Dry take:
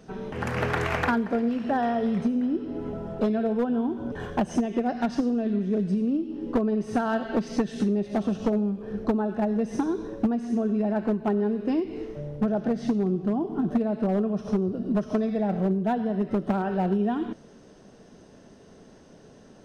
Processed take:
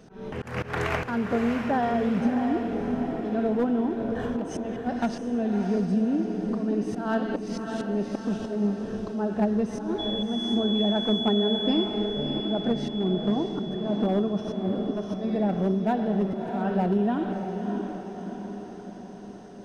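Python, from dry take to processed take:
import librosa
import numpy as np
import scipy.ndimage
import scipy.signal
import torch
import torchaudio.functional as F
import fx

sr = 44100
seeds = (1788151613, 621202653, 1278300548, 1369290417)

y = fx.dmg_tone(x, sr, hz=3400.0, level_db=-31.0, at=(9.98, 11.84), fade=0.02)
y = fx.auto_swell(y, sr, attack_ms=181.0)
y = fx.echo_diffused(y, sr, ms=630, feedback_pct=55, wet_db=-6.0)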